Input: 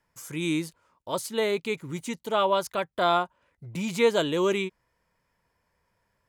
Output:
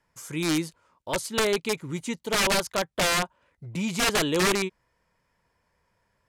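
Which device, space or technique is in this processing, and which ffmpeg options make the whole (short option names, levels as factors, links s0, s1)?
overflowing digital effects unit: -af "aeval=exprs='(mod(8.91*val(0)+1,2)-1)/8.91':c=same,lowpass=11000,volume=1.26"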